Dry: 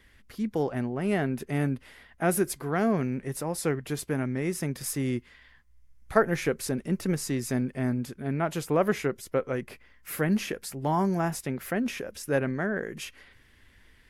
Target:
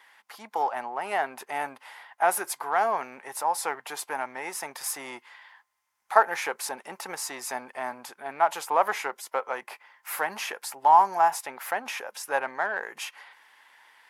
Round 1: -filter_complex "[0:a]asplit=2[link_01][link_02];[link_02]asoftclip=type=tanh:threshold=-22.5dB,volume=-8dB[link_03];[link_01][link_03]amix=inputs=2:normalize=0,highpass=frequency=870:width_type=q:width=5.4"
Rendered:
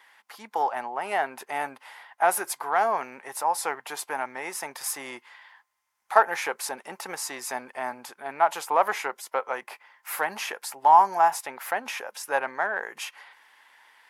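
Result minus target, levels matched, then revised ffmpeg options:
soft clipping: distortion −8 dB
-filter_complex "[0:a]asplit=2[link_01][link_02];[link_02]asoftclip=type=tanh:threshold=-33.5dB,volume=-8dB[link_03];[link_01][link_03]amix=inputs=2:normalize=0,highpass=frequency=870:width_type=q:width=5.4"

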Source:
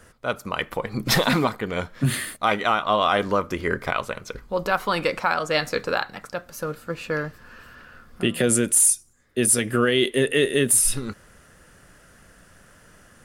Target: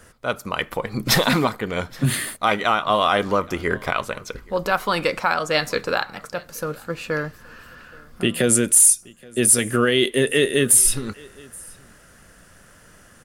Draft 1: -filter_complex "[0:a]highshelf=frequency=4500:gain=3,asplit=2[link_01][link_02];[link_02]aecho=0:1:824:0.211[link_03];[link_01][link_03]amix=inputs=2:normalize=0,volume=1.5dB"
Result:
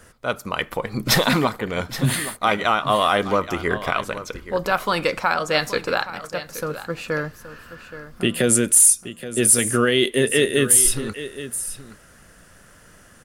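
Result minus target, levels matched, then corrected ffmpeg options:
echo-to-direct +11.5 dB
-filter_complex "[0:a]highshelf=frequency=4500:gain=3,asplit=2[link_01][link_02];[link_02]aecho=0:1:824:0.0562[link_03];[link_01][link_03]amix=inputs=2:normalize=0,volume=1.5dB"

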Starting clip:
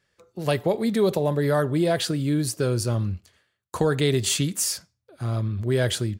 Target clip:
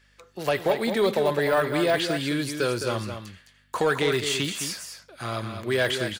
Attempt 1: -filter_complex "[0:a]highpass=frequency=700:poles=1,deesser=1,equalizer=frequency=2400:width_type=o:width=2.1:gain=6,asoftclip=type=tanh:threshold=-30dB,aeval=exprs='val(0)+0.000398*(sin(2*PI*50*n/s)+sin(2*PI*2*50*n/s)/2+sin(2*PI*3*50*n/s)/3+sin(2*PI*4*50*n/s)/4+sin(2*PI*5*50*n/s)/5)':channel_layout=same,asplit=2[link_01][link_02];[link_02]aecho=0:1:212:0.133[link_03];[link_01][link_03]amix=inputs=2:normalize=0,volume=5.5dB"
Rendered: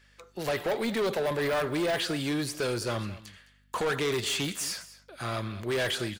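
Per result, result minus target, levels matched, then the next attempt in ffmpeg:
soft clipping: distortion +11 dB; echo-to-direct −9.5 dB
-filter_complex "[0:a]highpass=frequency=700:poles=1,deesser=1,equalizer=frequency=2400:width_type=o:width=2.1:gain=6,asoftclip=type=tanh:threshold=-19dB,aeval=exprs='val(0)+0.000398*(sin(2*PI*50*n/s)+sin(2*PI*2*50*n/s)/2+sin(2*PI*3*50*n/s)/3+sin(2*PI*4*50*n/s)/4+sin(2*PI*5*50*n/s)/5)':channel_layout=same,asplit=2[link_01][link_02];[link_02]aecho=0:1:212:0.133[link_03];[link_01][link_03]amix=inputs=2:normalize=0,volume=5.5dB"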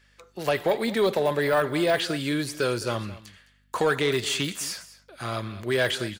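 echo-to-direct −9.5 dB
-filter_complex "[0:a]highpass=frequency=700:poles=1,deesser=1,equalizer=frequency=2400:width_type=o:width=2.1:gain=6,asoftclip=type=tanh:threshold=-19dB,aeval=exprs='val(0)+0.000398*(sin(2*PI*50*n/s)+sin(2*PI*2*50*n/s)/2+sin(2*PI*3*50*n/s)/3+sin(2*PI*4*50*n/s)/4+sin(2*PI*5*50*n/s)/5)':channel_layout=same,asplit=2[link_01][link_02];[link_02]aecho=0:1:212:0.398[link_03];[link_01][link_03]amix=inputs=2:normalize=0,volume=5.5dB"

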